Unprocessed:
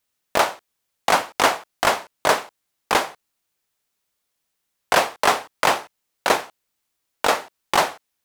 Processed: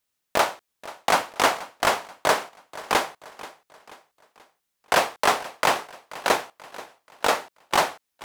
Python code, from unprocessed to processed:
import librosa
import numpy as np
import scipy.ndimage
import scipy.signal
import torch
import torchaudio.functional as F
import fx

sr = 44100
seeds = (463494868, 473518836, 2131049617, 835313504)

y = fx.echo_feedback(x, sr, ms=483, feedback_pct=44, wet_db=-18.0)
y = F.gain(torch.from_numpy(y), -2.5).numpy()